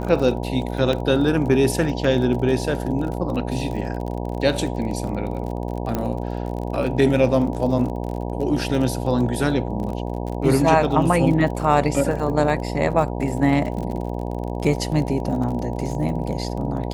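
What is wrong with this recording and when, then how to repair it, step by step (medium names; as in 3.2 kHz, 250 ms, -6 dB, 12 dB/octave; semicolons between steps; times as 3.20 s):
buzz 60 Hz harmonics 16 -27 dBFS
crackle 37 per s -29 dBFS
0.93 s: dropout 2.2 ms
5.95 s: pop -10 dBFS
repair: de-click; de-hum 60 Hz, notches 16; interpolate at 0.93 s, 2.2 ms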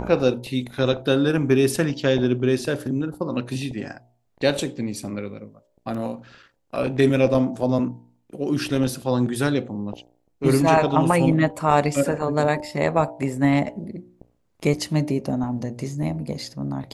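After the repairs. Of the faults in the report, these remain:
5.95 s: pop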